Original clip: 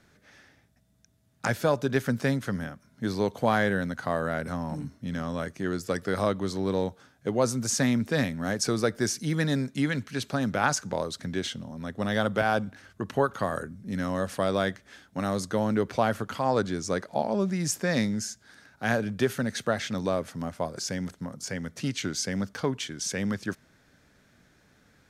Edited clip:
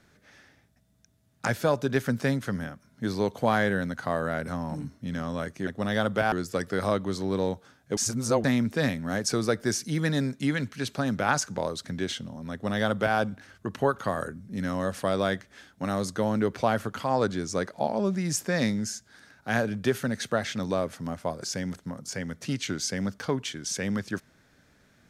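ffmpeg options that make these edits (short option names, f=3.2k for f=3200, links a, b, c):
-filter_complex "[0:a]asplit=5[a][b][c][d][e];[a]atrim=end=5.672[f];[b]atrim=start=11.868:end=12.522[g];[c]atrim=start=5.668:end=7.322[h];[d]atrim=start=7.318:end=7.792,asetpts=PTS-STARTPTS,areverse[i];[e]atrim=start=7.788[j];[f][g]acrossfade=d=0.004:c1=hsin:c2=hsin[k];[k][h]acrossfade=d=0.004:c1=hsin:c2=hsin[l];[l][i]acrossfade=d=0.004:c1=hsin:c2=hsin[m];[m][j]acrossfade=d=0.004:c1=hsin:c2=hsin"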